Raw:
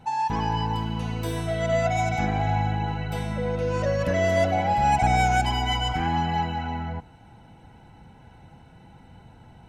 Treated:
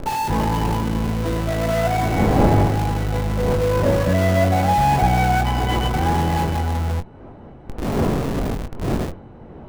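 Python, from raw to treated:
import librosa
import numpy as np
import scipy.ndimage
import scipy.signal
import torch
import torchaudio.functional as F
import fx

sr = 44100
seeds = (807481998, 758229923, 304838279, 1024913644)

p1 = fx.dmg_wind(x, sr, seeds[0], corner_hz=490.0, level_db=-32.0)
p2 = fx.lowpass(p1, sr, hz=1500.0, slope=6)
p3 = fx.low_shelf(p2, sr, hz=180.0, db=2.5)
p4 = fx.schmitt(p3, sr, flips_db=-32.0)
p5 = p3 + F.gain(torch.from_numpy(p4), -5.0).numpy()
p6 = fx.doubler(p5, sr, ms=22.0, db=-8)
y = F.gain(torch.from_numpy(p6), 2.0).numpy()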